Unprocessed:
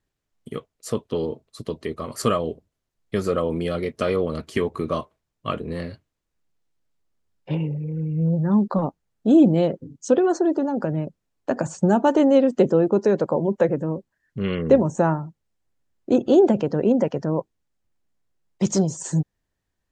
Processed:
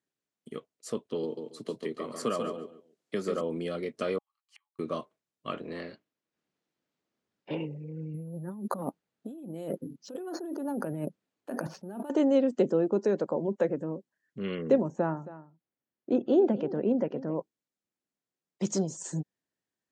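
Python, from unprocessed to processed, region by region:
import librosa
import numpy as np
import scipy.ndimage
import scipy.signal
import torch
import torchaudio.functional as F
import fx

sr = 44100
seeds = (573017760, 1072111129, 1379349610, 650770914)

y = fx.chain(x, sr, fx.highpass(hz=120.0, slope=12),
    fx.echo_feedback(ms=140, feedback_pct=18, wet_db=-6.0),
    fx.band_squash(depth_pct=40), at=(1.23, 3.41))
y = fx.chain(y, sr, fx.peak_eq(hz=3500.0, db=-8.5, octaves=0.24),
    fx.gate_flip(shuts_db=-25.0, range_db=-36),
    fx.cheby_ripple_highpass(hz=800.0, ripple_db=6), at=(4.18, 4.79))
y = fx.spec_clip(y, sr, under_db=13, at=(5.53, 7.64), fade=0.02)
y = fx.air_absorb(y, sr, metres=99.0, at=(5.53, 7.64), fade=0.02)
y = fx.chain(y, sr, fx.lowpass(hz=9400.0, slope=12),
    fx.resample_bad(factor=4, down='filtered', up='hold'),
    fx.over_compress(threshold_db=-28.0, ratio=-1.0), at=(8.14, 12.1))
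y = fx.chain(y, sr, fx.air_absorb(metres=190.0),
    fx.echo_single(ms=271, db=-16.0), at=(14.88, 17.35))
y = scipy.signal.sosfilt(scipy.signal.cheby1(2, 1.0, [220.0, 9000.0], 'bandpass', fs=sr, output='sos'), y)
y = fx.peak_eq(y, sr, hz=920.0, db=-2.0, octaves=0.77)
y = y * 10.0 ** (-7.0 / 20.0)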